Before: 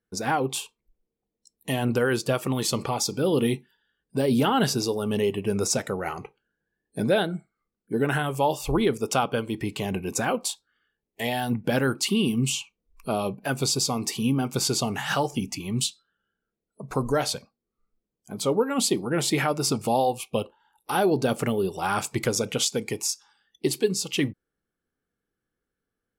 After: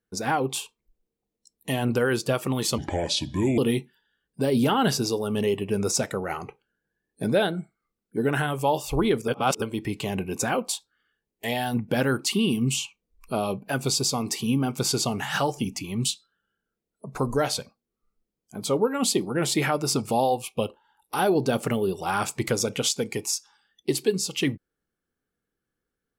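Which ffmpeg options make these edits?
-filter_complex "[0:a]asplit=5[a][b][c][d][e];[a]atrim=end=2.784[f];[b]atrim=start=2.78:end=3.34,asetpts=PTS-STARTPTS,asetrate=30870,aresample=44100[g];[c]atrim=start=3.336:end=9.042[h];[d]atrim=start=9.038:end=9.382,asetpts=PTS-STARTPTS,areverse[i];[e]atrim=start=9.378[j];[f][g]acrossfade=d=0.004:c1=hsin:c2=hsin[k];[k][h]acrossfade=d=0.004:c1=hsin:c2=hsin[l];[l][i]acrossfade=d=0.004:c1=hsin:c2=hsin[m];[m][j]acrossfade=d=0.004:c1=hsin:c2=hsin"

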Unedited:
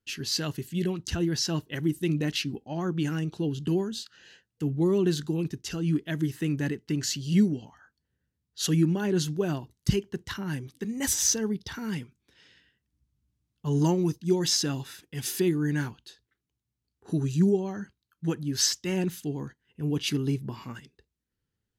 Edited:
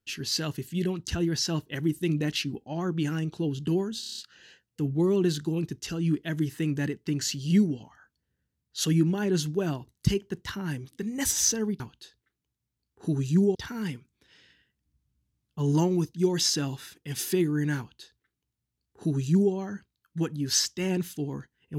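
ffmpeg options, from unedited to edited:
-filter_complex "[0:a]asplit=9[a][b][c][d][e][f][g][h][i];[a]atrim=end=4.032[j];[b]atrim=start=3.998:end=4.032[k];[c]atrim=start=3.998:end=4.032[l];[d]atrim=start=3.998:end=4.032[m];[e]atrim=start=3.998:end=4.032[n];[f]atrim=start=3.998:end=4.032[o];[g]atrim=start=3.998:end=11.622[p];[h]atrim=start=15.848:end=17.602[q];[i]atrim=start=11.618[r];[j][k]acrossfade=d=0.004:c1=hsin:c2=hsin[s];[s][l]acrossfade=d=0.004:c1=hsin:c2=hsin[t];[t][m]acrossfade=d=0.004:c1=hsin:c2=hsin[u];[u][n]acrossfade=d=0.004:c1=hsin:c2=hsin[v];[v][o]acrossfade=d=0.004:c1=hsin:c2=hsin[w];[w][p]acrossfade=d=0.004:c1=hsin:c2=hsin[x];[x][q]acrossfade=d=0.004:c1=hsin:c2=hsin[y];[y][r]acrossfade=d=0.004:c1=hsin:c2=hsin"

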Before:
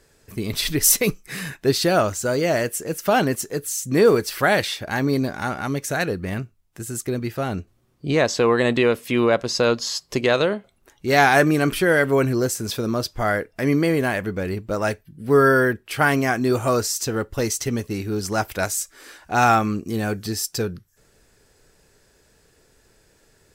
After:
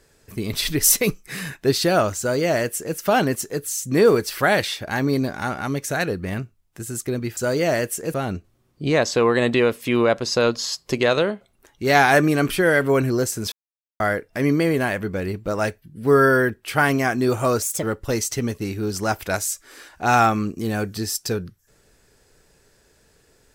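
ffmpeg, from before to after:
-filter_complex "[0:a]asplit=7[a][b][c][d][e][f][g];[a]atrim=end=7.372[h];[b]atrim=start=2.188:end=2.962[i];[c]atrim=start=7.368:end=12.75,asetpts=PTS-STARTPTS,afade=t=out:st=5.378:d=0.004:c=hsin[j];[d]atrim=start=12.75:end=13.23,asetpts=PTS-STARTPTS,volume=0[k];[e]atrim=start=13.23:end=16.854,asetpts=PTS-STARTPTS,afade=t=in:d=0.004:c=hsin[l];[f]atrim=start=16.85:end=17.12,asetpts=PTS-STARTPTS,asetrate=56889,aresample=44100,atrim=end_sample=9230,asetpts=PTS-STARTPTS[m];[g]atrim=start=17.116[n];[h][i]acrossfade=d=0.004:c1=hsin:c2=hsin[o];[j][k][l]concat=n=3:v=0:a=1[p];[o][p]acrossfade=d=0.004:c1=hsin:c2=hsin[q];[q][m]acrossfade=d=0.004:c1=hsin:c2=hsin[r];[r][n]acrossfade=d=0.004:c1=hsin:c2=hsin"

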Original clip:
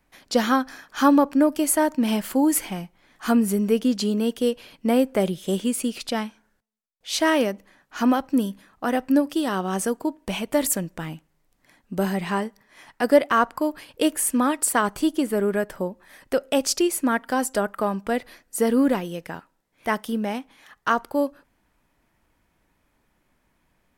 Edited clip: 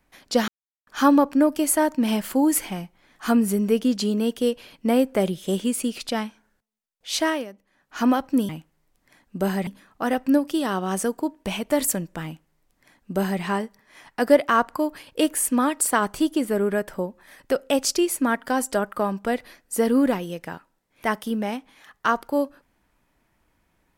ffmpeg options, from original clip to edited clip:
-filter_complex "[0:a]asplit=7[a][b][c][d][e][f][g];[a]atrim=end=0.48,asetpts=PTS-STARTPTS,afade=t=out:st=0.476:d=0.004:c=hsin[h];[b]atrim=start=0.48:end=0.87,asetpts=PTS-STARTPTS,volume=0[i];[c]atrim=start=0.87:end=7.45,asetpts=PTS-STARTPTS,afade=t=in:d=0.004:c=hsin,afade=t=out:st=6.31:d=0.27:silence=0.211349[j];[d]atrim=start=7.45:end=7.7,asetpts=PTS-STARTPTS,volume=-13.5dB[k];[e]atrim=start=7.7:end=8.492,asetpts=PTS-STARTPTS,afade=t=in:d=0.27:silence=0.211349[l];[f]atrim=start=11.058:end=12.242[m];[g]atrim=start=8.488[n];[h][i][j][k][l]concat=n=5:v=0:a=1[o];[o][m]acrossfade=d=0.004:c1=hsin:c2=hsin[p];[p][n]acrossfade=d=0.004:c1=hsin:c2=hsin"

